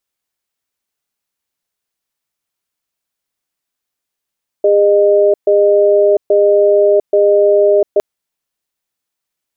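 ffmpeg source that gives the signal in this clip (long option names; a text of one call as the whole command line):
ffmpeg -f lavfi -i "aevalsrc='0.335*(sin(2*PI*406*t)+sin(2*PI*612*t))*clip(min(mod(t,0.83),0.7-mod(t,0.83))/0.005,0,1)':duration=3.36:sample_rate=44100" out.wav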